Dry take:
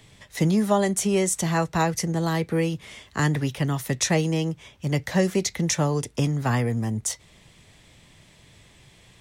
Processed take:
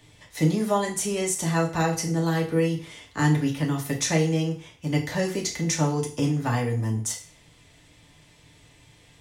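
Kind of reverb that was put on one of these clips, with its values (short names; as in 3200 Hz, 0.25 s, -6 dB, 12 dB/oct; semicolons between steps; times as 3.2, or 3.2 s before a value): FDN reverb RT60 0.43 s, low-frequency decay 0.9×, high-frequency decay 1×, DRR -0.5 dB; gain -4.5 dB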